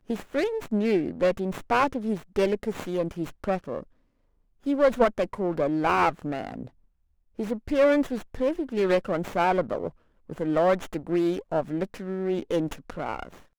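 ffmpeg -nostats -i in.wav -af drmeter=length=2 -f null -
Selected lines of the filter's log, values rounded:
Channel 1: DR: 11.8
Overall DR: 11.8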